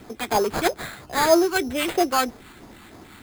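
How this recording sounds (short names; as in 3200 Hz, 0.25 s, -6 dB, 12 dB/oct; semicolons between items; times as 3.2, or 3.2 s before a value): phasing stages 2, 3.1 Hz, lowest notch 540–2100 Hz; aliases and images of a low sample rate 5700 Hz, jitter 0%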